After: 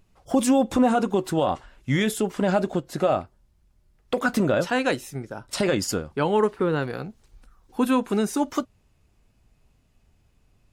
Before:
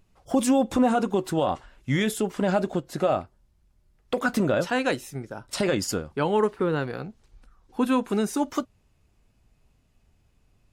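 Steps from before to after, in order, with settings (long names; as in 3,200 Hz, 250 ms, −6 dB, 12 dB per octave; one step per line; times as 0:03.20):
0:06.82–0:07.91: high-shelf EQ 9,300 Hz +8.5 dB
level +1.5 dB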